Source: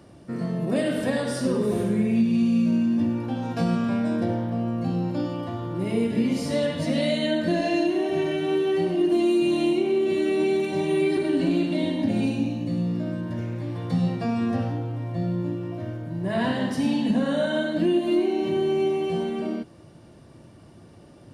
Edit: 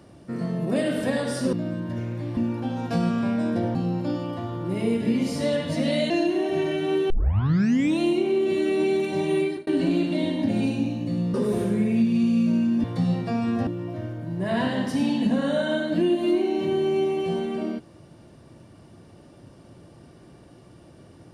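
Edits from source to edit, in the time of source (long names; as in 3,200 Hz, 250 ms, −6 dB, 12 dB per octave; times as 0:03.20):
0:01.53–0:03.03: swap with 0:12.94–0:13.78
0:04.41–0:04.85: remove
0:07.20–0:07.70: remove
0:08.70: tape start 0.90 s
0:10.98–0:11.27: fade out
0:14.61–0:15.51: remove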